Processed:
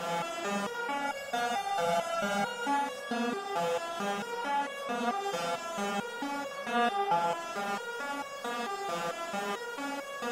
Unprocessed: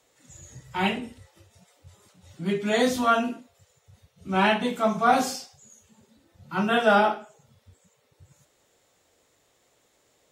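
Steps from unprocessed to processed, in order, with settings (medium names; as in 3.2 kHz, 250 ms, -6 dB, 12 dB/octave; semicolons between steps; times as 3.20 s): spectral levelling over time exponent 0.2; compression, threshold -16 dBFS, peak gain reduction 7.5 dB; 1.01–2.67 s: comb 1.4 ms, depth 77%; flutter echo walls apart 7.5 m, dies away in 0.28 s; reverberation RT60 1.4 s, pre-delay 3 ms, DRR 11 dB; resonator arpeggio 4.5 Hz 170–560 Hz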